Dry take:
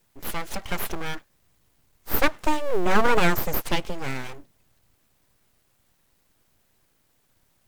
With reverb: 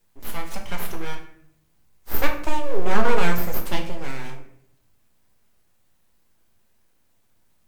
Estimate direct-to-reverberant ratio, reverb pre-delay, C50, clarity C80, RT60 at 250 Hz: 2.0 dB, 5 ms, 8.0 dB, 11.0 dB, 0.90 s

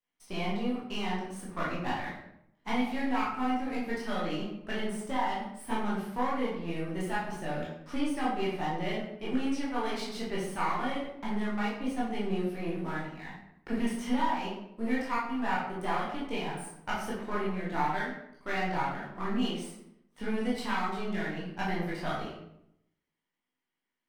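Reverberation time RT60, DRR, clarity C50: 0.75 s, −7.0 dB, 2.0 dB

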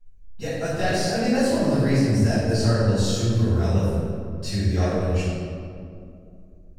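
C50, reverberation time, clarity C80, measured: −3.5 dB, 2.5 s, −1.0 dB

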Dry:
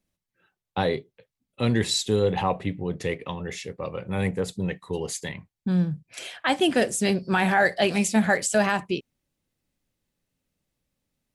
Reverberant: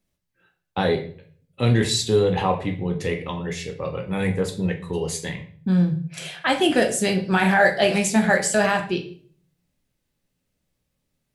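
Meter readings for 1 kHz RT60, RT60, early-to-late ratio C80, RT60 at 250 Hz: 0.45 s, 0.50 s, 15.0 dB, 0.65 s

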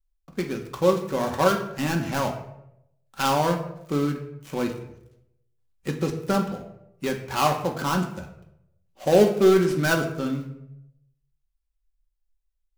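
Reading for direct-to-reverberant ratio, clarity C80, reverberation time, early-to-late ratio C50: 2.0 dB, 11.5 dB, 0.80 s, 9.0 dB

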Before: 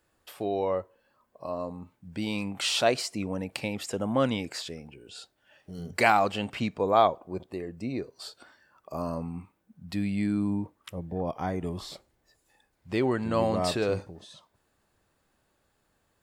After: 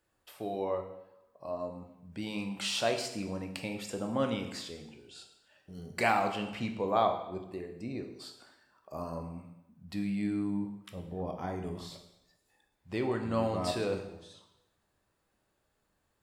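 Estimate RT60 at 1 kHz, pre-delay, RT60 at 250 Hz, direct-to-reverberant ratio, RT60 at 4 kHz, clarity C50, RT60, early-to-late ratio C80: 0.90 s, 6 ms, 0.75 s, 4.5 dB, 0.85 s, 8.5 dB, 0.90 s, 10.5 dB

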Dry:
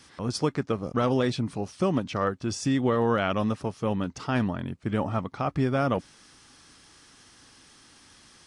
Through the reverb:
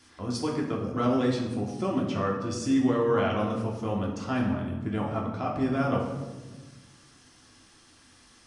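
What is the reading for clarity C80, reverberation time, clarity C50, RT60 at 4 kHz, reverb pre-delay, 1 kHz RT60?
7.0 dB, 1.3 s, 4.5 dB, 0.75 s, 3 ms, 1.1 s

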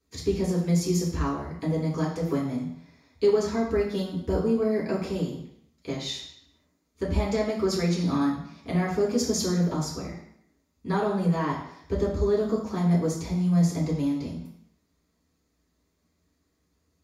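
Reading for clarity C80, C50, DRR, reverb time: 8.0 dB, 5.0 dB, −8.0 dB, 0.70 s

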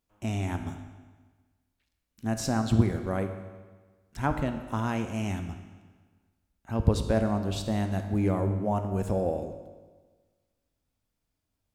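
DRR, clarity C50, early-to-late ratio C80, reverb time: 7.0 dB, 8.5 dB, 10.0 dB, 1.4 s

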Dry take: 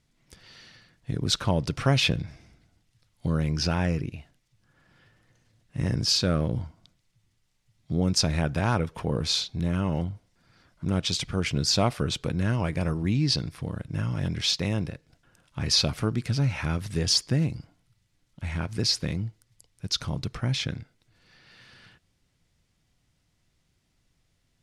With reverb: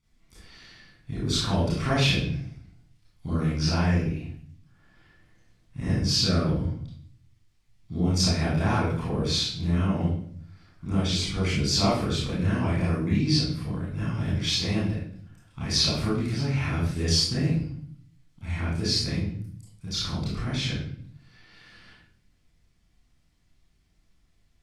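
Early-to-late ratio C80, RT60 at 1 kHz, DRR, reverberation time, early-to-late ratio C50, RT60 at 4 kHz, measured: 5.0 dB, 0.50 s, −9.5 dB, 0.55 s, −0.5 dB, 0.50 s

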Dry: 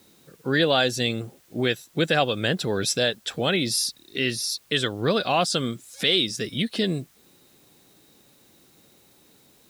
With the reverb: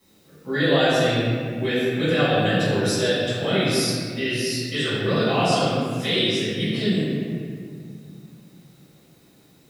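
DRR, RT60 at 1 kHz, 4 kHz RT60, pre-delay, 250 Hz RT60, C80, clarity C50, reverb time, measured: −14.5 dB, 1.7 s, 1.3 s, 5 ms, 3.1 s, −1.5 dB, −3.5 dB, 2.0 s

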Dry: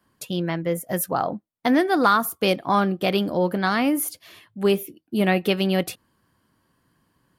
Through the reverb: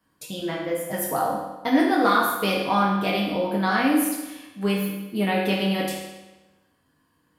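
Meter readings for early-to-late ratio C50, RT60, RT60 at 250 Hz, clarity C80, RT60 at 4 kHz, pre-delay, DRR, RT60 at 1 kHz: 2.0 dB, 1.1 s, 1.1 s, 4.5 dB, 1.0 s, 4 ms, −4.5 dB, 1.1 s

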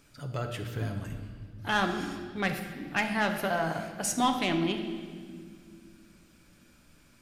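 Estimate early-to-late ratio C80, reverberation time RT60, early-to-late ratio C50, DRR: 8.5 dB, 2.0 s, 7.5 dB, 4.5 dB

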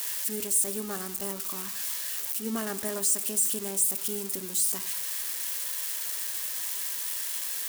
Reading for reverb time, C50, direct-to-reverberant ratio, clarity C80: 1.1 s, 16.0 dB, 11.0 dB, 18.0 dB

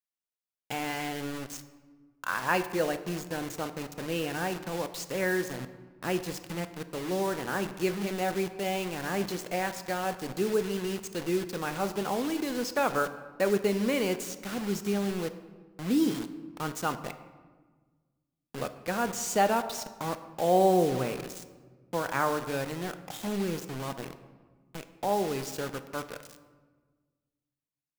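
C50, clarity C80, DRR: 12.5 dB, 13.5 dB, 9.5 dB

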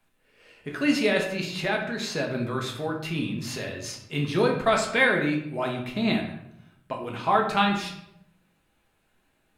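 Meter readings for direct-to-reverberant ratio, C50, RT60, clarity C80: 0.5 dB, 6.5 dB, 0.80 s, 9.5 dB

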